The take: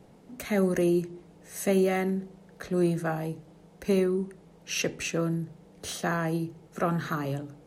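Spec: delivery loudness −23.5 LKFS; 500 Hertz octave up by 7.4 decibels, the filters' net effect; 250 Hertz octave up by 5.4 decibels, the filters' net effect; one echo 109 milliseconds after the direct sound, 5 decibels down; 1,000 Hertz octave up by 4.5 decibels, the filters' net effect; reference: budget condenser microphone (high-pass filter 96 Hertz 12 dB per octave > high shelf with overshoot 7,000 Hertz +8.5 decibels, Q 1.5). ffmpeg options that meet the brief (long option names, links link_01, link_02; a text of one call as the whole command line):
ffmpeg -i in.wav -af "highpass=96,equalizer=frequency=250:width_type=o:gain=5.5,equalizer=frequency=500:width_type=o:gain=7.5,equalizer=frequency=1000:width_type=o:gain=3,highshelf=frequency=7000:width_type=q:width=1.5:gain=8.5,aecho=1:1:109:0.562,volume=-1.5dB" out.wav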